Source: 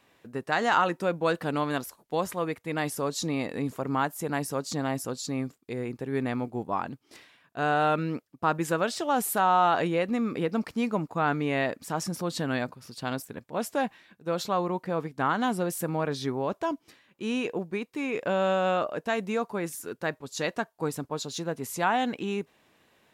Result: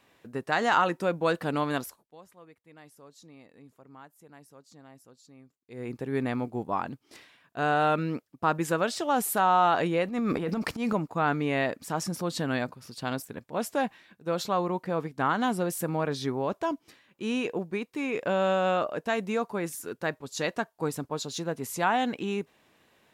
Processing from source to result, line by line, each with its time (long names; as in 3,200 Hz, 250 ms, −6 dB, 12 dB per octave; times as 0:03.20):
0:01.85–0:05.93: duck −22.5 dB, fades 0.26 s
0:10.05–0:10.93: transient designer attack −11 dB, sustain +10 dB